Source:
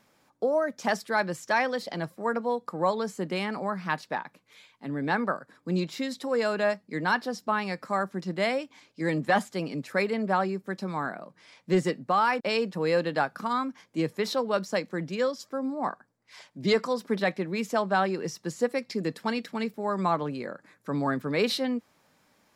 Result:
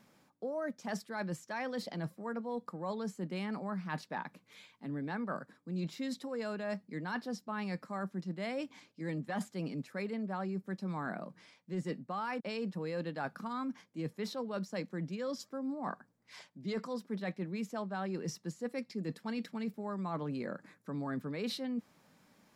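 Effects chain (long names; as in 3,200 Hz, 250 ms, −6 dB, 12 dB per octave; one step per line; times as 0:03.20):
parametric band 190 Hz +7.5 dB 1.2 octaves
reversed playback
downward compressor 6 to 1, threshold −33 dBFS, peak gain reduction 17.5 dB
reversed playback
level −2.5 dB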